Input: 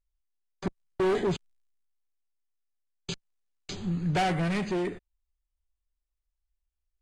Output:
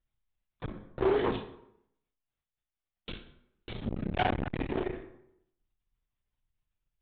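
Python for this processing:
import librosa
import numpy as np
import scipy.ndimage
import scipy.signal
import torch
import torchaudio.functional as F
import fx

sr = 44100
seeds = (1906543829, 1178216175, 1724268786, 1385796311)

y = fx.lpc_vocoder(x, sr, seeds[0], excitation='whisper', order=16)
y = fx.low_shelf(y, sr, hz=77.0, db=-12.0, at=(1.05, 3.11))
y = fx.room_early_taps(y, sr, ms=(34, 53), db=(-9.0, -14.0))
y = fx.rev_plate(y, sr, seeds[1], rt60_s=0.74, hf_ratio=0.7, predelay_ms=0, drr_db=8.0)
y = fx.transformer_sat(y, sr, knee_hz=570.0)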